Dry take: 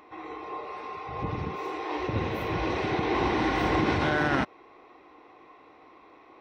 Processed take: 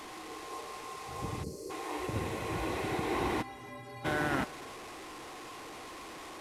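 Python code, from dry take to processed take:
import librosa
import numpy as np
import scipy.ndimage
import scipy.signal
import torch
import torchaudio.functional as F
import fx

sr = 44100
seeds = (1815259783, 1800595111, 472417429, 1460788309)

y = fx.delta_mod(x, sr, bps=64000, step_db=-34.0)
y = fx.spec_box(y, sr, start_s=1.43, length_s=0.27, low_hz=630.0, high_hz=4100.0, gain_db=-28)
y = fx.stiff_resonator(y, sr, f0_hz=120.0, decay_s=0.73, stiffness=0.03, at=(3.41, 4.04), fade=0.02)
y = y + 10.0 ** (-22.0 / 20.0) * np.pad(y, (int(280 * sr / 1000.0), 0))[:len(y)]
y = F.gain(torch.from_numpy(y), -6.0).numpy()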